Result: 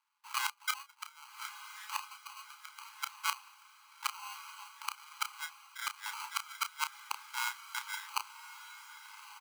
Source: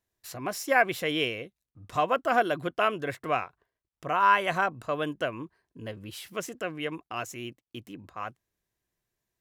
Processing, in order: Wiener smoothing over 9 samples; LPF 3700 Hz 24 dB/oct; high shelf 2300 Hz +3.5 dB; notch 2500 Hz, Q 26; in parallel at 0 dB: compressor 5:1, threshold -36 dBFS, peak gain reduction 18 dB; on the sum: sample-and-hold 25×; frequency shift +42 Hz; flipped gate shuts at -19 dBFS, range -31 dB; brick-wall FIR high-pass 820 Hz; doubler 31 ms -9 dB; diffused feedback echo 1.197 s, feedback 41%, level -12 dB; gain +6 dB

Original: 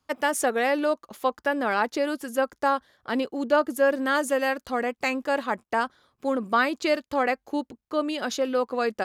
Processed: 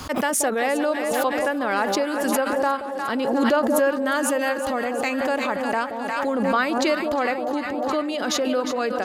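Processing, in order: echo with dull and thin repeats by turns 0.178 s, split 840 Hz, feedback 78%, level -9 dB; backwards sustainer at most 22 dB/s

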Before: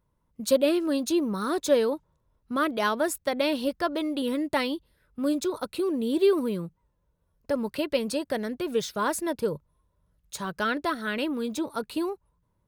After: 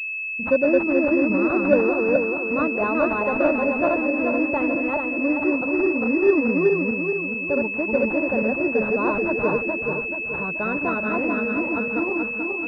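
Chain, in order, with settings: regenerating reverse delay 0.216 s, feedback 68%, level -1 dB; pulse-width modulation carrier 2600 Hz; gain +2.5 dB

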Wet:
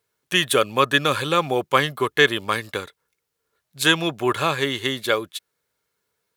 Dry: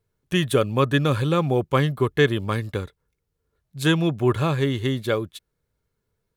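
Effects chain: HPF 1100 Hz 6 dB/oct; gain +8.5 dB

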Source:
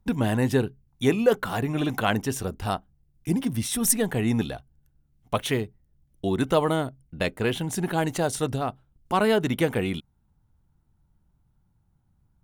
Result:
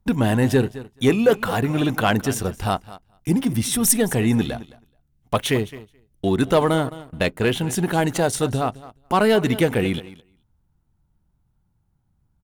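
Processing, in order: feedback echo 0.214 s, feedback 16%, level -17 dB; sample leveller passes 1; gain +1.5 dB

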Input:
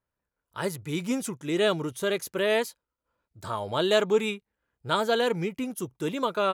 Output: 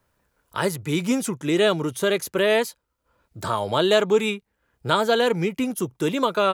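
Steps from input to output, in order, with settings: three-band squash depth 40%; gain +5 dB

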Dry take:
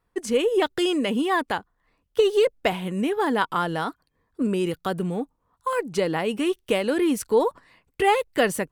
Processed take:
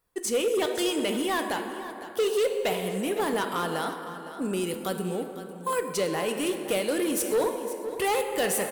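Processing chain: pre-emphasis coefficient 0.8; plate-style reverb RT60 3.2 s, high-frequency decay 0.45×, DRR 6 dB; hard clip -30.5 dBFS, distortion -12 dB; bell 530 Hz +5 dB 1 oct; echo 0.51 s -14 dB; gain +6.5 dB

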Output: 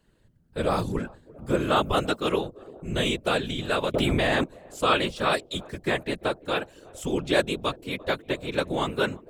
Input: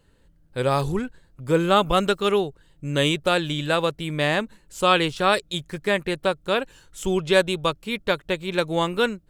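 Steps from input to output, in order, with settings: narrowing echo 0.344 s, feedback 76%, band-pass 460 Hz, level -21.5 dB; whisperiser; 3.94–4.44 fast leveller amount 100%; gain -4 dB

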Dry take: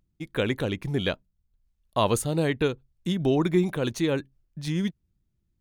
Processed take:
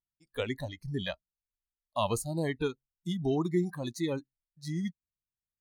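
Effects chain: wow and flutter 22 cents; spectral noise reduction 23 dB; gain -6 dB

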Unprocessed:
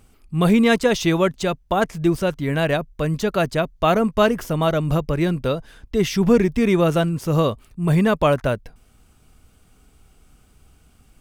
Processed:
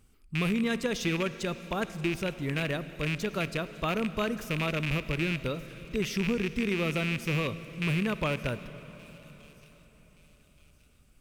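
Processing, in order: rattling part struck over -22 dBFS, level -11 dBFS; bell 730 Hz -7 dB 0.94 oct; compressor, threshold -16 dBFS, peak gain reduction 5.5 dB; thin delay 1.174 s, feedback 39%, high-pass 4800 Hz, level -14 dB; on a send at -13 dB: reverb RT60 4.7 s, pre-delay 44 ms; on the sum: gain -8.5 dB

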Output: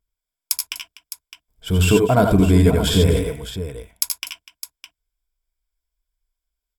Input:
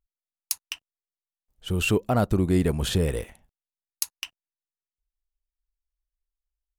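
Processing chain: ripple EQ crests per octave 1.7, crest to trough 10 dB; on a send: tapped delay 78/90/247/610 ms -7/-6.5/-16/-11.5 dB; on the sum: gain +5 dB

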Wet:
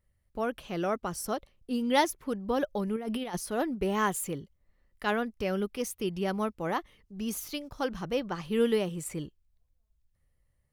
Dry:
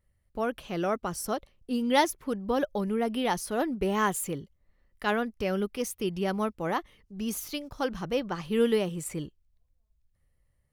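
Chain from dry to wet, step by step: 2.96–3.37 negative-ratio compressor -31 dBFS, ratio -0.5; gain -1.5 dB

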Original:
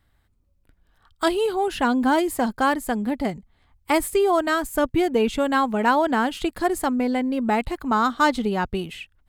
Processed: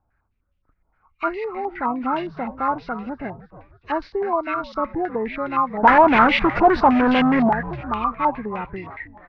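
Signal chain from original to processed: nonlinear frequency compression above 1000 Hz 1.5:1; 5.83–7.49 sample leveller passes 5; frequency-shifting echo 0.315 s, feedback 45%, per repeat -93 Hz, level -15 dB; stepped low-pass 9.7 Hz 850–2900 Hz; gain -6.5 dB

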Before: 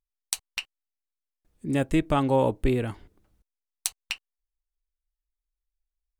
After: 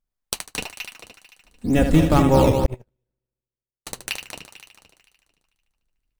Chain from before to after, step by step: octaver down 1 oct, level +2 dB; 0.45–2.02 comb 4.1 ms, depth 80%; on a send: multi-head echo 74 ms, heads first and third, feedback 57%, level -7.5 dB; 2.66–3.87 on the sum: gate -14 dBFS, range -57 dB; in parallel at -3.5 dB: decimation with a swept rate 10×, swing 100% 2.1 Hz

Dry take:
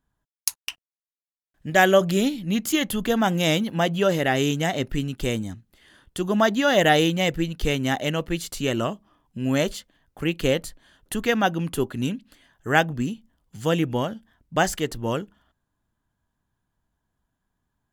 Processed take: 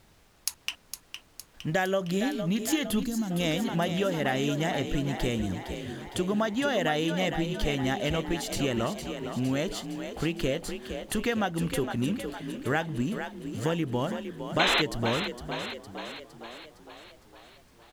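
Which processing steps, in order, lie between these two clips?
G.711 law mismatch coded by mu; added noise pink -60 dBFS; high shelf 9300 Hz -6.5 dB; compressor 5:1, threshold -25 dBFS, peak gain reduction 12.5 dB; painted sound noise, 14.59–14.82, 300–4200 Hz -24 dBFS; frequency-shifting echo 0.46 s, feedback 58%, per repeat +39 Hz, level -8.5 dB; spectral gain 3.04–3.3, 310–3900 Hz -14 dB

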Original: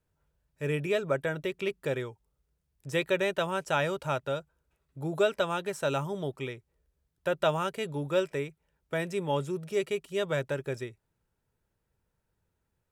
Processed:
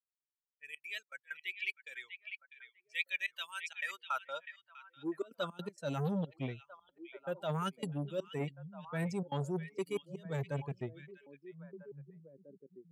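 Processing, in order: per-bin expansion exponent 2; low-pass opened by the level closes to 1300 Hz, open at -33 dBFS; high shelf 5600 Hz +5.5 dB; reverse; compressor 20:1, threshold -42 dBFS, peak gain reduction 21 dB; reverse; step gate "xxx.xxxx.xx.x.xx" 161 bpm -24 dB; high-pass sweep 2200 Hz -> 160 Hz, 3.71–5.66; delay with a stepping band-pass 0.648 s, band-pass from 2600 Hz, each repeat -1.4 oct, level -8 dB; core saturation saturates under 560 Hz; gain +8.5 dB

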